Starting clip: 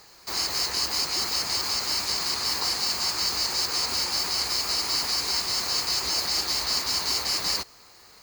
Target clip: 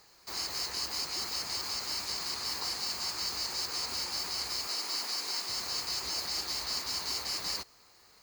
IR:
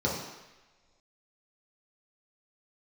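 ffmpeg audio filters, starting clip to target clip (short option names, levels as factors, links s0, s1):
-filter_complex "[0:a]asettb=1/sr,asplit=3[s0][s1][s2];[s0]atrim=end=4.674[s3];[s1]atrim=start=4.67:end=5.49,asetpts=PTS-STARTPTS,afade=t=in:d=0.004:c=qsin,afade=t=out:st=0.816:d=0.004:c=qsin,highpass=230[s4];[s2]atrim=start=5.486[s5];[s3][s4]acrossfade=d=0.004:c1=hsin:c2=qsin[s6];[s6][s5]acrossfade=d=0.004:c1=qsin:c2=hsin,volume=0.376"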